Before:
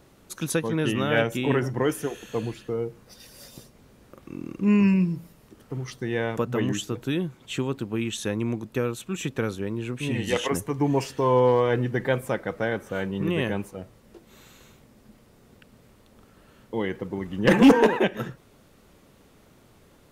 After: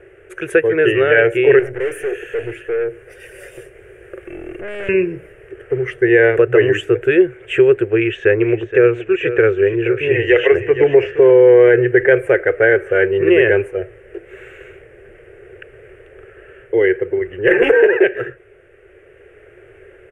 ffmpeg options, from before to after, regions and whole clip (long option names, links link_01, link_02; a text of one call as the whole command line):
ffmpeg -i in.wav -filter_complex "[0:a]asettb=1/sr,asplit=3[link_01][link_02][link_03];[link_01]atrim=end=1.594[link_04];[link_02]atrim=start=1.59:end=4.89,asetpts=PTS-STARTPTS,afade=type=in:duration=0.004:curve=qsin,afade=type=out:start_time=3.296:duration=0.004:curve=qsin,aeval=exprs='(tanh(50.1*val(0)+0.4)-tanh(0.4))/50.1':channel_layout=same,highshelf=frequency=5700:gain=11[link_05];[link_03]atrim=start=4.886[link_06];[link_04][link_05]acrossfade=duration=0.004:curve1=hsin:curve2=qsin[link_07];[link_07][link_06]acrossfade=duration=0.004:curve1=qsin:curve2=hsin,asettb=1/sr,asplit=3[link_08][link_09][link_10];[link_08]atrim=end=7.904[link_11];[link_09]atrim=start=7.9:end=11.3,asetpts=PTS-STARTPTS,afade=type=in:duration=0.004:curve=qsin,afade=type=out:start_time=3.396:duration=0.004:curve=qsin,lowpass=frequency=7000:width=0.5412,lowpass=frequency=7000:width=1.3066,acrossover=split=5200[link_12][link_13];[link_13]acompressor=threshold=-56dB:ratio=4:attack=1:release=60[link_14];[link_12][link_14]amix=inputs=2:normalize=0,aecho=1:1:471:0.237,atrim=end_sample=149940[link_15];[link_10]atrim=start=11.296[link_16];[link_11][link_15]acrossfade=duration=0.004:curve1=hsin:curve2=qsin[link_17];[link_17][link_16]acrossfade=duration=0.004:curve1=qsin:curve2=hsin,firequalizer=gain_entry='entry(110,0);entry(180,-19);entry(260,-21);entry(370,14);entry(980,-12);entry(1600,12);entry(2800,3);entry(4000,-28);entry(9200,-10);entry(13000,-25)':delay=0.05:min_phase=1,dynaudnorm=framelen=470:gausssize=5:maxgain=4dB,alimiter=level_in=7dB:limit=-1dB:release=50:level=0:latency=1,volume=-1dB" out.wav